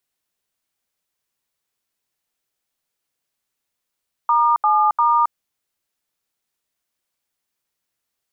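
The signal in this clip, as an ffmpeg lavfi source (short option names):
-f lavfi -i "aevalsrc='0.168*clip(min(mod(t,0.348),0.271-mod(t,0.348))/0.002,0,1)*(eq(floor(t/0.348),0)*(sin(2*PI*941*mod(t,0.348))+sin(2*PI*1209*mod(t,0.348)))+eq(floor(t/0.348),1)*(sin(2*PI*852*mod(t,0.348))+sin(2*PI*1209*mod(t,0.348)))+eq(floor(t/0.348),2)*(sin(2*PI*941*mod(t,0.348))+sin(2*PI*1209*mod(t,0.348))))':d=1.044:s=44100"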